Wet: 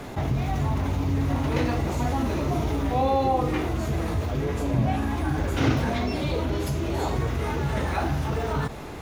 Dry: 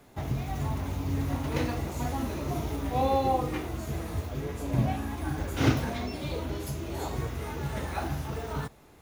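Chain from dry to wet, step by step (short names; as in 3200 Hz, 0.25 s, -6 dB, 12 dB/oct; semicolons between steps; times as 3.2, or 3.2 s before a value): high shelf 8100 Hz -11.5 dB; fast leveller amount 50%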